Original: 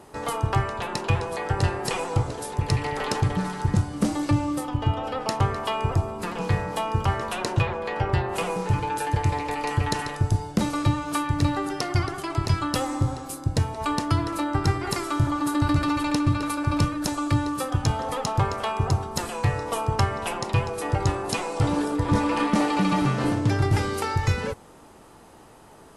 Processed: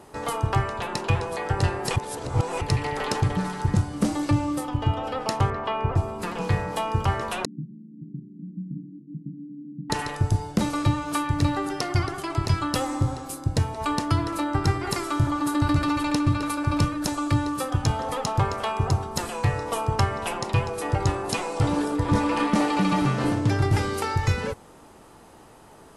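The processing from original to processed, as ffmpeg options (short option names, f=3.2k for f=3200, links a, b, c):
-filter_complex "[0:a]asettb=1/sr,asplit=3[a][b][c];[a]atrim=end=5.504[d];[b]atrim=start=5.5:end=5.96,asetpts=PTS-STARTPTS,afade=t=in:d=0.004:c=qsin,afade=t=out:st=0.456:d=0.004:c=qsin,lowpass=2.5k[e];[c]atrim=start=5.956[f];[d][e]acrossfade=d=0.004:c1=hsin:c2=qsin[g];[g][f]acrossfade=d=0.004:c1=qsin:c2=hsin,asettb=1/sr,asplit=3[h][i][j];[h]atrim=end=7.454[k];[i]atrim=start=7.45:end=9.9,asetpts=PTS-STARTPTS,afade=t=in:d=0.004:c=qsin,afade=t=out:st=2.446:d=0.004:c=qsin,asuperpass=centerf=210:order=12:qfactor=1.4[l];[j]atrim=start=9.896[m];[k][l]acrossfade=d=0.004:c1=hsin:c2=qsin[n];[n][m]acrossfade=d=0.004:c1=qsin:c2=hsin,asplit=3[o][p][q];[o]atrim=end=1.962[r];[p]atrim=start=1.958:end=2.612,asetpts=PTS-STARTPTS,areverse[s];[q]atrim=start=2.608[t];[r][s]acrossfade=d=0.004:c1=hsin:c2=hsin[u];[u][t]acrossfade=d=0.004:c1=hsin:c2=hsin"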